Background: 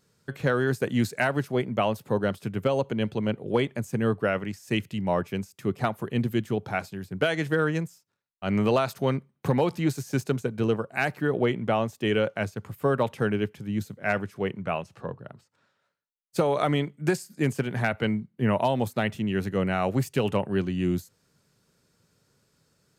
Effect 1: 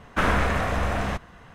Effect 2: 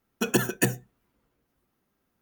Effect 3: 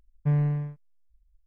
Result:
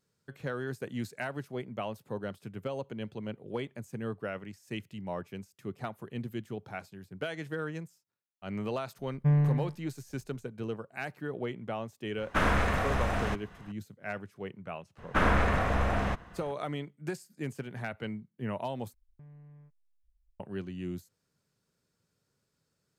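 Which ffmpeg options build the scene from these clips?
-filter_complex "[3:a]asplit=2[a][b];[1:a]asplit=2[c][d];[0:a]volume=-11.5dB[e];[d]highshelf=f=3.4k:g=-7[f];[b]acompressor=threshold=-44dB:ratio=6:attack=3.2:release=140:knee=1:detection=peak[g];[e]asplit=2[h][i];[h]atrim=end=18.944[j];[g]atrim=end=1.46,asetpts=PTS-STARTPTS,volume=-8dB[k];[i]atrim=start=20.396[l];[a]atrim=end=1.46,asetpts=PTS-STARTPTS,volume=-0.5dB,afade=t=in:d=0.004:c=hsin,afade=t=out:st=1.456:d=0.004:c=hsin,adelay=8990[m];[c]atrim=end=1.54,asetpts=PTS-STARTPTS,volume=-4.5dB,afade=t=in:d=0.004:c=hsin,afade=t=out:st=1.536:d=0.004:c=hsin,adelay=12180[n];[f]atrim=end=1.54,asetpts=PTS-STARTPTS,volume=-2.5dB,afade=t=in:d=0.004:c=hsin,afade=t=out:st=1.536:d=0.004:c=hsin,adelay=14980[o];[j][k]acrossfade=d=0.004:c1=hsin:c2=hsin[p];[p][l]acrossfade=d=0.004:c1=hsin:c2=hsin[q];[q][m][n][o]amix=inputs=4:normalize=0"

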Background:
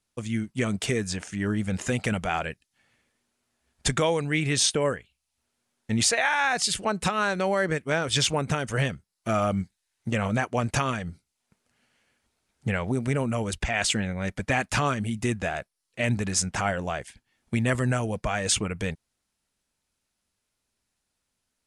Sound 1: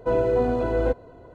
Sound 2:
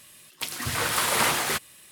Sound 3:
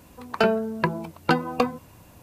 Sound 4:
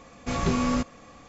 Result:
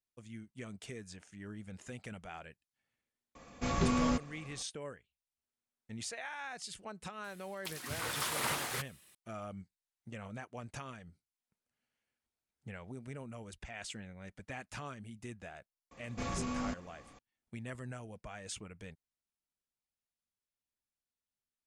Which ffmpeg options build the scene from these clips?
-filter_complex "[4:a]asplit=2[a][b];[0:a]volume=-19.5dB[c];[b]alimiter=limit=-20.5dB:level=0:latency=1:release=18[d];[a]atrim=end=1.28,asetpts=PTS-STARTPTS,volume=-5.5dB,afade=t=in:d=0.004:c=hsin,afade=t=out:st=1.276:d=0.004:c=hsin,adelay=3350[e];[2:a]atrim=end=1.91,asetpts=PTS-STARTPTS,volume=-12dB,afade=t=in:d=0.004:c=hsin,afade=t=out:st=1.906:d=0.004:c=hsin,adelay=7240[f];[d]atrim=end=1.28,asetpts=PTS-STARTPTS,volume=-8.5dB,afade=t=in:d=0.004:c=hsin,afade=t=out:st=1.276:d=0.004:c=hsin,adelay=15910[g];[c][e][f][g]amix=inputs=4:normalize=0"

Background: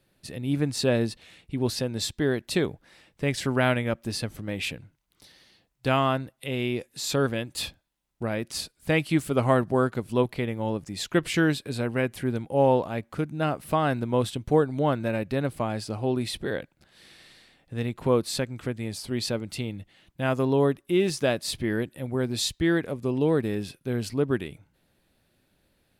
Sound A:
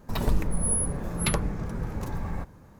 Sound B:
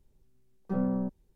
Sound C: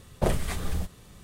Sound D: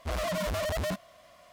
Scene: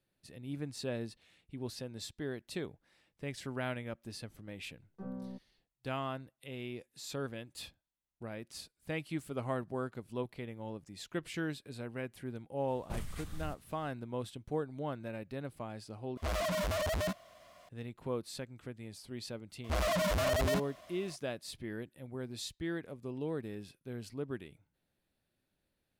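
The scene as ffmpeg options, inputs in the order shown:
-filter_complex "[4:a]asplit=2[a][b];[0:a]volume=-14.5dB[c];[3:a]equalizer=f=450:w=0.91:g=-9.5[d];[c]asplit=2[e][f];[e]atrim=end=16.174[g];[a]atrim=end=1.52,asetpts=PTS-STARTPTS,volume=-2.5dB[h];[f]atrim=start=17.686[i];[2:a]atrim=end=1.35,asetpts=PTS-STARTPTS,volume=-14dB,afade=t=in:d=0.004:c=hsin,afade=t=out:st=1.346:d=0.004:c=hsin,adelay=189189S[j];[d]atrim=end=1.23,asetpts=PTS-STARTPTS,volume=-13dB,afade=t=in:d=0.004:c=hsin,afade=t=out:st=1.226:d=0.004:c=hsin,adelay=559188S[k];[b]atrim=end=1.52,asetpts=PTS-STARTPTS,afade=t=in:d=0.004:c=hsin,afade=t=out:st=1.516:d=0.004:c=hsin,adelay=19640[l];[g][h]acrossfade=d=0.004:c1=hsin:c2=hsin[m];[m][i]acrossfade=d=0.004:c1=hsin:c2=hsin[n];[n][j][k][l]amix=inputs=4:normalize=0"

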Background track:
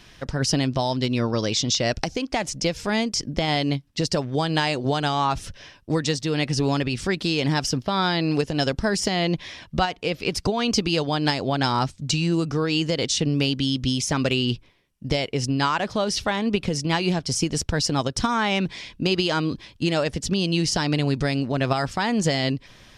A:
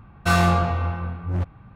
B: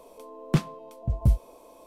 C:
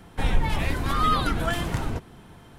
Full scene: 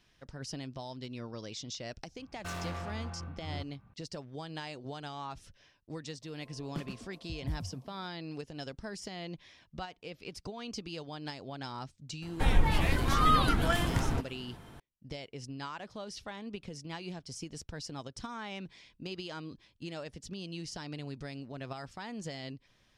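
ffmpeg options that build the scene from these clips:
-filter_complex "[0:a]volume=-19dB[a];[1:a]volume=23dB,asoftclip=hard,volume=-23dB[b];[2:a]asplit=5[c][d][e][f][g];[d]adelay=123,afreqshift=42,volume=-6dB[h];[e]adelay=246,afreqshift=84,volume=-14.9dB[i];[f]adelay=369,afreqshift=126,volume=-23.7dB[j];[g]adelay=492,afreqshift=168,volume=-32.6dB[k];[c][h][i][j][k]amix=inputs=5:normalize=0[l];[b]atrim=end=1.75,asetpts=PTS-STARTPTS,volume=-14dB,afade=t=in:d=0.004:c=hsin,afade=t=out:st=1.746:d=0.004:c=hsin,adelay=2190[m];[l]atrim=end=1.86,asetpts=PTS-STARTPTS,volume=-16.5dB,afade=t=in:d=0.004:c=hsin,afade=t=out:st=1.856:d=0.004:c=hsin,adelay=6220[n];[3:a]atrim=end=2.58,asetpts=PTS-STARTPTS,volume=-2.5dB,afade=t=in:d=0.004:c=hsin,afade=t=out:st=2.576:d=0.004:c=hsin,adelay=12220[o];[a][m][n][o]amix=inputs=4:normalize=0"

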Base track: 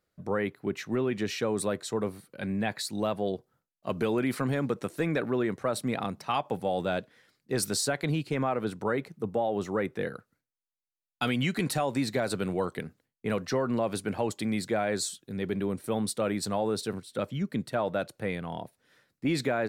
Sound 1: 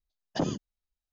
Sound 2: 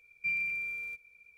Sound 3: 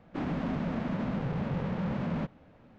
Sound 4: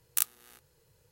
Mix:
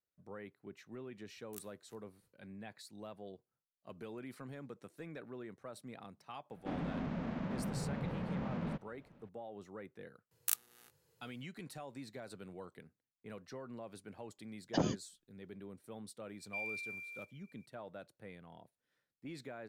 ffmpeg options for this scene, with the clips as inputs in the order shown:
-filter_complex "[4:a]asplit=2[a][b];[0:a]volume=-19.5dB[c];[a]aeval=exprs='val(0)*pow(10,-23*(0.5-0.5*cos(2*PI*3.4*n/s))/20)':c=same[d];[b]highpass=f=81:w=0.5412,highpass=f=81:w=1.3066[e];[2:a]bass=f=250:g=-14,treble=f=4k:g=6[f];[d]atrim=end=1.11,asetpts=PTS-STARTPTS,volume=-11dB,afade=t=in:d=0.004:c=hsin,afade=t=out:st=1.106:d=0.004:c=hsin,adelay=1360[g];[3:a]atrim=end=2.78,asetpts=PTS-STARTPTS,volume=-7dB,afade=t=in:d=0.004:c=hsin,afade=t=out:st=2.776:d=0.004:c=hsin,adelay=6510[h];[e]atrim=end=1.11,asetpts=PTS-STARTPTS,volume=-6.5dB,afade=t=in:d=0.004:c=hsin,afade=t=out:st=1.106:d=0.004:c=hsin,adelay=10310[i];[1:a]atrim=end=1.12,asetpts=PTS-STARTPTS,volume=-3.5dB,afade=t=in:d=0.004:c=hsin,afade=t=out:st=1.116:d=0.004:c=hsin,adelay=14380[j];[f]atrim=end=1.37,asetpts=PTS-STARTPTS,volume=-10.5dB,afade=t=in:d=0.004:c=hsin,afade=t=out:st=1.366:d=0.004:c=hsin,adelay=16290[k];[c][g][h][i][j][k]amix=inputs=6:normalize=0"

